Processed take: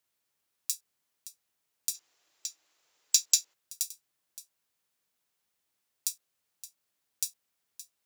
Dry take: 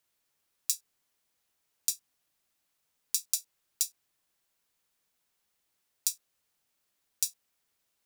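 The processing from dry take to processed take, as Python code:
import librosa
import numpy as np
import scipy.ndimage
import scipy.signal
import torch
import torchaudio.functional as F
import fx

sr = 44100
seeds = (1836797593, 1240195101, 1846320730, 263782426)

y = scipy.signal.sosfilt(scipy.signal.butter(2, 57.0, 'highpass', fs=sr, output='sos'), x)
y = y + 10.0 ** (-14.5 / 20.0) * np.pad(y, (int(569 * sr / 1000.0), 0))[:len(y)]
y = fx.spec_box(y, sr, start_s=1.94, length_s=1.6, low_hz=280.0, high_hz=7700.0, gain_db=12)
y = F.gain(torch.from_numpy(y), -2.5).numpy()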